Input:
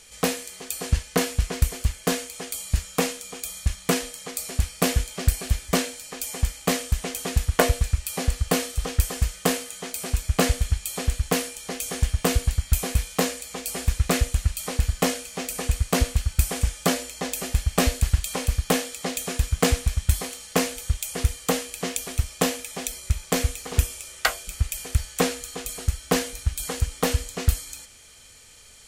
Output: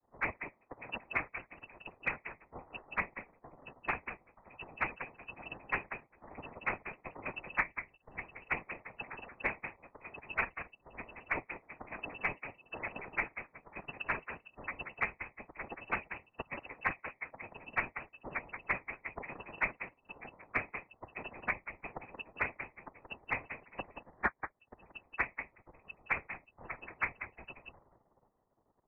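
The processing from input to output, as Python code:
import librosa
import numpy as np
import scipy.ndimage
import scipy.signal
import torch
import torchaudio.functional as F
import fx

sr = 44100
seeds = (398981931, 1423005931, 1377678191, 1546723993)

p1 = fx.bin_expand(x, sr, power=3.0)
p2 = scipy.signal.sosfilt(scipy.signal.butter(2, 660.0, 'highpass', fs=sr, output='sos'), p1)
p3 = p2 + fx.echo_single(p2, sr, ms=178, db=-12.0, dry=0)
p4 = fx.noise_vocoder(p3, sr, seeds[0], bands=6)
p5 = fx.freq_invert(p4, sr, carrier_hz=2800)
p6 = fx.band_squash(p5, sr, depth_pct=100)
y = F.gain(torch.from_numpy(p6), 6.5).numpy()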